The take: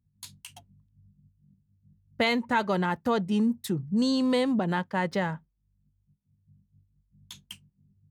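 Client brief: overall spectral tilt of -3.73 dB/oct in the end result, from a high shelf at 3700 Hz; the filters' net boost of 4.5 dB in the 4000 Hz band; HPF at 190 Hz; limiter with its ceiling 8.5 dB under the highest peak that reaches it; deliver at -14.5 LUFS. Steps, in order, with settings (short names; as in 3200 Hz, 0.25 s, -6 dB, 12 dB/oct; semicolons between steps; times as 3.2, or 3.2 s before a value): HPF 190 Hz; high shelf 3700 Hz -5 dB; bell 4000 Hz +8.5 dB; gain +15.5 dB; limiter -3.5 dBFS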